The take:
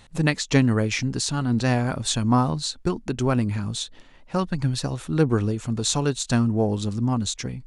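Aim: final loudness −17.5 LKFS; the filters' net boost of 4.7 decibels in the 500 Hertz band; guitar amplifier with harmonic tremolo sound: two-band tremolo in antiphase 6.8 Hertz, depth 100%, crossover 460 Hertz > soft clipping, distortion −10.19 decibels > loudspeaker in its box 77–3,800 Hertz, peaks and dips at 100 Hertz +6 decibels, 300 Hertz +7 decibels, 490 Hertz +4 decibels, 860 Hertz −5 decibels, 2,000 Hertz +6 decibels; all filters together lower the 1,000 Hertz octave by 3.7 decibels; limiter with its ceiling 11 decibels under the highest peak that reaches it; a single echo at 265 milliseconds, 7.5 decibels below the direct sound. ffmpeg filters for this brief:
ffmpeg -i in.wav -filter_complex "[0:a]equalizer=frequency=500:width_type=o:gain=3,equalizer=frequency=1000:width_type=o:gain=-4,alimiter=limit=-15.5dB:level=0:latency=1,aecho=1:1:265:0.422,acrossover=split=460[link_01][link_02];[link_01]aeval=exprs='val(0)*(1-1/2+1/2*cos(2*PI*6.8*n/s))':channel_layout=same[link_03];[link_02]aeval=exprs='val(0)*(1-1/2-1/2*cos(2*PI*6.8*n/s))':channel_layout=same[link_04];[link_03][link_04]amix=inputs=2:normalize=0,asoftclip=threshold=-27dB,highpass=77,equalizer=frequency=100:width_type=q:width=4:gain=6,equalizer=frequency=300:width_type=q:width=4:gain=7,equalizer=frequency=490:width_type=q:width=4:gain=4,equalizer=frequency=860:width_type=q:width=4:gain=-5,equalizer=frequency=2000:width_type=q:width=4:gain=6,lowpass=frequency=3800:width=0.5412,lowpass=frequency=3800:width=1.3066,volume=15dB" out.wav

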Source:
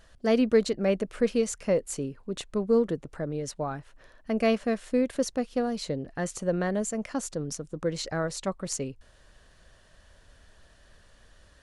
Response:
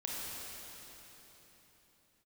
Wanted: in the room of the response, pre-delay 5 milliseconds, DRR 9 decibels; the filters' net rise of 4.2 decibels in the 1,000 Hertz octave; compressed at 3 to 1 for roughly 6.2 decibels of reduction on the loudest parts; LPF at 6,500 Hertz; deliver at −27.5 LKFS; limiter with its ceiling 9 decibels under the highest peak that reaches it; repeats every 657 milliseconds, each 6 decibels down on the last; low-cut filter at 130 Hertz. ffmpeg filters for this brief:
-filter_complex "[0:a]highpass=130,lowpass=6500,equalizer=frequency=1000:width_type=o:gain=6.5,acompressor=threshold=-24dB:ratio=3,alimiter=limit=-23.5dB:level=0:latency=1,aecho=1:1:657|1314|1971|2628|3285|3942:0.501|0.251|0.125|0.0626|0.0313|0.0157,asplit=2[link_01][link_02];[1:a]atrim=start_sample=2205,adelay=5[link_03];[link_02][link_03]afir=irnorm=-1:irlink=0,volume=-11.5dB[link_04];[link_01][link_04]amix=inputs=2:normalize=0,volume=5.5dB"

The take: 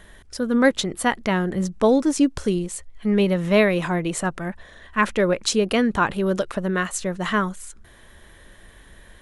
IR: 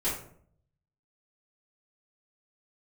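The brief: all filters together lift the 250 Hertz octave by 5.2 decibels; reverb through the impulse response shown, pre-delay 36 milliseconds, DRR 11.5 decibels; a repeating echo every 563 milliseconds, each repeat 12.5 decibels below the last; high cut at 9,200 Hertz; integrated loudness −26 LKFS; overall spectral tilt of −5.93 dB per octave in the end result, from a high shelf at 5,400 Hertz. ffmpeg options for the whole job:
-filter_complex "[0:a]lowpass=9200,equalizer=frequency=250:width_type=o:gain=6.5,highshelf=frequency=5400:gain=-5.5,aecho=1:1:563|1126|1689:0.237|0.0569|0.0137,asplit=2[link_01][link_02];[1:a]atrim=start_sample=2205,adelay=36[link_03];[link_02][link_03]afir=irnorm=-1:irlink=0,volume=-19dB[link_04];[link_01][link_04]amix=inputs=2:normalize=0,volume=-8dB"

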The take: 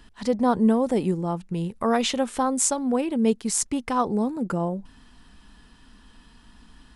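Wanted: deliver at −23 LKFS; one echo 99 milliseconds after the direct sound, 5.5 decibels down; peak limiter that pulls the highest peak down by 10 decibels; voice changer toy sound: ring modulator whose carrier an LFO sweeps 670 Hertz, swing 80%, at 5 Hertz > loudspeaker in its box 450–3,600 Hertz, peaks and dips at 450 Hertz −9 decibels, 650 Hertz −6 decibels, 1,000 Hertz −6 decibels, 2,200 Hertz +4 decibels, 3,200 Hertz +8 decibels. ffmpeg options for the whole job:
ffmpeg -i in.wav -af "alimiter=limit=-14.5dB:level=0:latency=1,aecho=1:1:99:0.531,aeval=exprs='val(0)*sin(2*PI*670*n/s+670*0.8/5*sin(2*PI*5*n/s))':channel_layout=same,highpass=450,equalizer=frequency=450:width_type=q:width=4:gain=-9,equalizer=frequency=650:width_type=q:width=4:gain=-6,equalizer=frequency=1000:width_type=q:width=4:gain=-6,equalizer=frequency=2200:width_type=q:width=4:gain=4,equalizer=frequency=3200:width_type=q:width=4:gain=8,lowpass=frequency=3600:width=0.5412,lowpass=frequency=3600:width=1.3066,volume=7.5dB" out.wav

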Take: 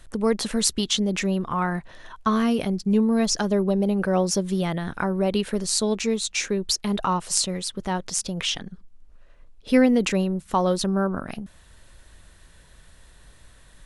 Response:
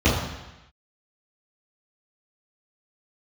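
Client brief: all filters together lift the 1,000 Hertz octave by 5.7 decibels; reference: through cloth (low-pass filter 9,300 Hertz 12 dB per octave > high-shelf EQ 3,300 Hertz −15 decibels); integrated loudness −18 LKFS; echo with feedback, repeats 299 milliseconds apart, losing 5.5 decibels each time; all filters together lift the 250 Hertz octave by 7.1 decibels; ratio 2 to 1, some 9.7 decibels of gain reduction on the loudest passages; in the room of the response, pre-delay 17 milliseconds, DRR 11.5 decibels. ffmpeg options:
-filter_complex "[0:a]equalizer=frequency=250:width_type=o:gain=8.5,equalizer=frequency=1000:width_type=o:gain=8,acompressor=threshold=-23dB:ratio=2,aecho=1:1:299|598|897|1196|1495|1794|2093:0.531|0.281|0.149|0.079|0.0419|0.0222|0.0118,asplit=2[link_01][link_02];[1:a]atrim=start_sample=2205,adelay=17[link_03];[link_02][link_03]afir=irnorm=-1:irlink=0,volume=-31dB[link_04];[link_01][link_04]amix=inputs=2:normalize=0,lowpass=9300,highshelf=frequency=3300:gain=-15,volume=4.5dB"

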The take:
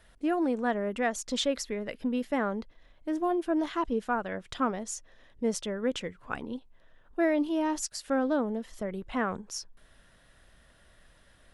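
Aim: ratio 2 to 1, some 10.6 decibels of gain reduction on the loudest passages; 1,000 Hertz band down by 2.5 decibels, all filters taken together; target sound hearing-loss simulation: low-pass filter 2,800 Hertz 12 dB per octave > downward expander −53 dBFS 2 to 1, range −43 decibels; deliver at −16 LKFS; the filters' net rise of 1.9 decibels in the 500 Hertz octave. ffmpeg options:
ffmpeg -i in.wav -af "equalizer=frequency=500:width_type=o:gain=4,equalizer=frequency=1000:width_type=o:gain=-5.5,acompressor=threshold=-42dB:ratio=2,lowpass=2800,agate=range=-43dB:threshold=-53dB:ratio=2,volume=24dB" out.wav

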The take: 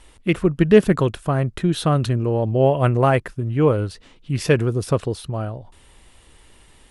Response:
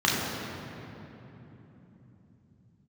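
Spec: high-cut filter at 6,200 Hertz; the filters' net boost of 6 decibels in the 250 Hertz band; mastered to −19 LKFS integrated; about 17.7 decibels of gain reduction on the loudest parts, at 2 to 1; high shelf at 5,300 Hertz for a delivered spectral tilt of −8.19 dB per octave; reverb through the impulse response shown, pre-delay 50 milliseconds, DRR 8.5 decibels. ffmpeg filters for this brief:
-filter_complex "[0:a]lowpass=6200,equalizer=frequency=250:width_type=o:gain=8.5,highshelf=frequency=5300:gain=-4.5,acompressor=threshold=-36dB:ratio=2,asplit=2[link_01][link_02];[1:a]atrim=start_sample=2205,adelay=50[link_03];[link_02][link_03]afir=irnorm=-1:irlink=0,volume=-25dB[link_04];[link_01][link_04]amix=inputs=2:normalize=0,volume=10dB"

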